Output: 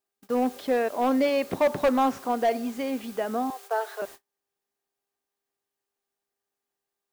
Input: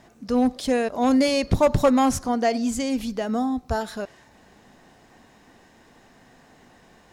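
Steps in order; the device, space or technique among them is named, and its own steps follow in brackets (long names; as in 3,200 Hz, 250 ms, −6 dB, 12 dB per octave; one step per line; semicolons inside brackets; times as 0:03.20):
aircraft radio (band-pass filter 340–2,300 Hz; hard clipping −16.5 dBFS, distortion −13 dB; hum with harmonics 400 Hz, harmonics 4, −55 dBFS −5 dB per octave; white noise bed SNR 21 dB; noise gate −41 dBFS, range −39 dB)
0:03.50–0:04.02: Butterworth high-pass 370 Hz 72 dB per octave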